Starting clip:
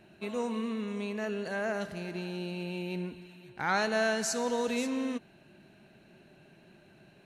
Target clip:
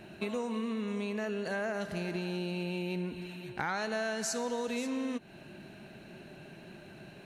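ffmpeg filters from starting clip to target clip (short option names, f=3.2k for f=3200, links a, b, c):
-af "acompressor=threshold=-40dB:ratio=6,volume=8dB"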